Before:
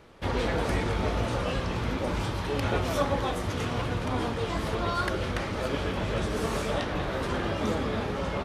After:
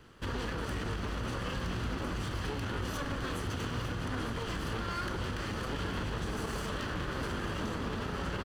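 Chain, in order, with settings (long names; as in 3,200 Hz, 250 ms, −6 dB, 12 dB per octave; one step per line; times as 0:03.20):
lower of the sound and its delayed copy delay 0.65 ms
brickwall limiter −26 dBFS, peak gain reduction 9 dB
single-tap delay 908 ms −11 dB
level −1.5 dB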